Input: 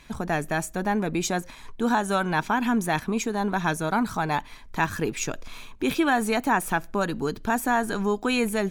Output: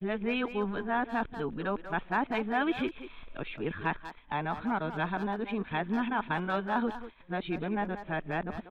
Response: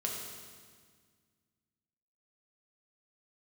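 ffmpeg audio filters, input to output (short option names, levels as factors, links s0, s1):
-filter_complex "[0:a]areverse,agate=range=0.0224:threshold=0.0158:ratio=3:detection=peak,aresample=8000,aresample=44100,asplit=2[s0][s1];[s1]adelay=190,highpass=300,lowpass=3400,asoftclip=type=hard:threshold=0.112,volume=0.316[s2];[s0][s2]amix=inputs=2:normalize=0,volume=0.447"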